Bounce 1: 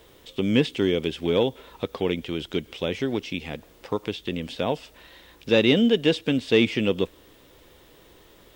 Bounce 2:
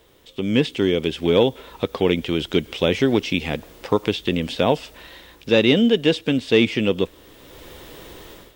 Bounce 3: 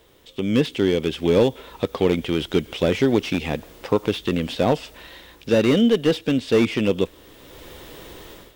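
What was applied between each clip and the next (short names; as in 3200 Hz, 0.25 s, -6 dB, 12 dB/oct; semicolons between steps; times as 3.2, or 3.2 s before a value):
AGC gain up to 15 dB; gain -2.5 dB
slew limiter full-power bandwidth 150 Hz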